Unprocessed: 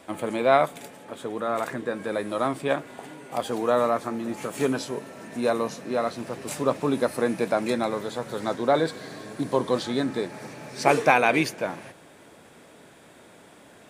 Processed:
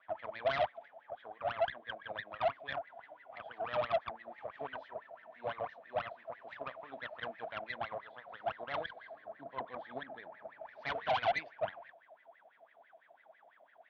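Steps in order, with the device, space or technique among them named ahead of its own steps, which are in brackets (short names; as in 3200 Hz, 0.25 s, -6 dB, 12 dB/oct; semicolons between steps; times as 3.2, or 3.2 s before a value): 9.15–10.61 tilt -3 dB/oct; wah-wah guitar rig (wah 6 Hz 640–2000 Hz, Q 16; tube stage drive 37 dB, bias 0.75; speaker cabinet 89–4200 Hz, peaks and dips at 370 Hz -5 dB, 660 Hz +6 dB, 1300 Hz -4 dB, 3300 Hz +7 dB); gain +7 dB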